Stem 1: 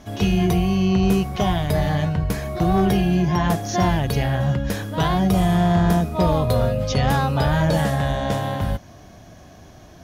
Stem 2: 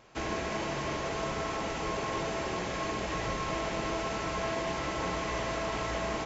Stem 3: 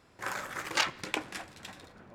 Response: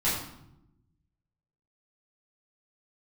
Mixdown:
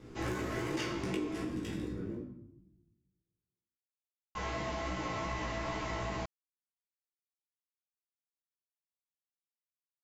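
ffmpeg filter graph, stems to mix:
-filter_complex "[1:a]volume=-6.5dB,asplit=3[link_01][link_02][link_03];[link_01]atrim=end=1.38,asetpts=PTS-STARTPTS,afade=type=out:start_time=1.376:duration=0.004:curve=hsin[link_04];[link_02]atrim=start=1.38:end=4.35,asetpts=PTS-STARTPTS,volume=0[link_05];[link_03]atrim=start=4.35,asetpts=PTS-STARTPTS,afade=type=in:duration=0.004:curve=hsin[link_06];[link_04][link_05][link_06]concat=n=3:v=0:a=1,asplit=2[link_07][link_08];[link_08]volume=-6.5dB[link_09];[2:a]lowshelf=frequency=550:width_type=q:width=3:gain=11.5,bandreject=frequency=4100:width=7.7,volume=-2.5dB,asplit=2[link_10][link_11];[link_11]volume=-6.5dB[link_12];[3:a]atrim=start_sample=2205[link_13];[link_09][link_12]amix=inputs=2:normalize=0[link_14];[link_14][link_13]afir=irnorm=-1:irlink=0[link_15];[link_07][link_10][link_15]amix=inputs=3:normalize=0,flanger=delay=16:depth=2.2:speed=2.6,acompressor=threshold=-32dB:ratio=12"

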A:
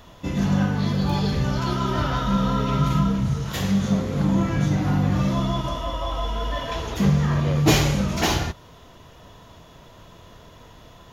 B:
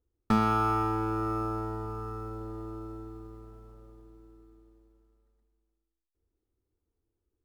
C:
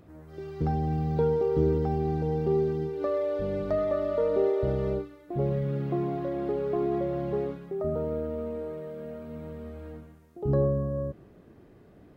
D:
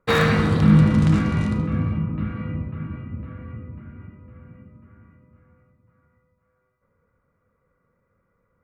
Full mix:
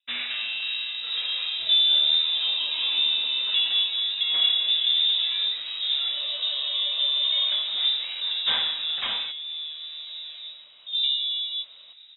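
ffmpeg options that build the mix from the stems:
ffmpeg -i stem1.wav -i stem2.wav -i stem3.wav -i stem4.wav -filter_complex "[0:a]adelay=800,volume=-6.5dB[link_01];[1:a]volume=-5dB[link_02];[2:a]dynaudnorm=framelen=160:gausssize=9:maxgain=6dB,flanger=delay=17:depth=6.8:speed=0.38,adelay=500,volume=1.5dB[link_03];[3:a]volume=-11.5dB[link_04];[link_01][link_02][link_03][link_04]amix=inputs=4:normalize=0,highpass=89,acrossover=split=300[link_05][link_06];[link_05]acompressor=threshold=-42dB:ratio=2[link_07];[link_07][link_06]amix=inputs=2:normalize=0,lowpass=frequency=3400:width_type=q:width=0.5098,lowpass=frequency=3400:width_type=q:width=0.6013,lowpass=frequency=3400:width_type=q:width=0.9,lowpass=frequency=3400:width_type=q:width=2.563,afreqshift=-4000" out.wav

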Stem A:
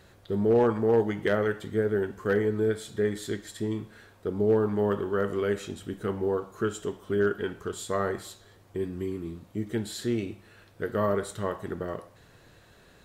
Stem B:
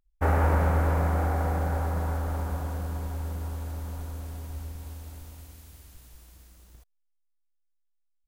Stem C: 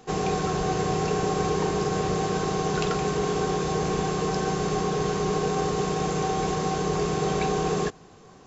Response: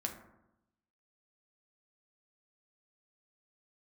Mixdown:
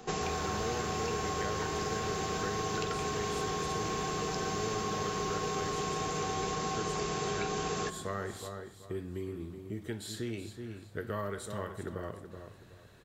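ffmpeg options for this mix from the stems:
-filter_complex "[0:a]equalizer=frequency=96:width=1.5:gain=6.5,adelay=150,volume=-4dB,asplit=2[link_01][link_02];[link_02]volume=-11.5dB[link_03];[1:a]volume=-8dB[link_04];[2:a]volume=-2.5dB,asplit=2[link_05][link_06];[link_06]volume=-4.5dB[link_07];[3:a]atrim=start_sample=2205[link_08];[link_07][link_08]afir=irnorm=-1:irlink=0[link_09];[link_03]aecho=0:1:374|748|1122|1496:1|0.27|0.0729|0.0197[link_10];[link_01][link_04][link_05][link_09][link_10]amix=inputs=5:normalize=0,acrossover=split=340|1300[link_11][link_12][link_13];[link_11]acompressor=threshold=-40dB:ratio=4[link_14];[link_12]acompressor=threshold=-39dB:ratio=4[link_15];[link_13]acompressor=threshold=-38dB:ratio=4[link_16];[link_14][link_15][link_16]amix=inputs=3:normalize=0"

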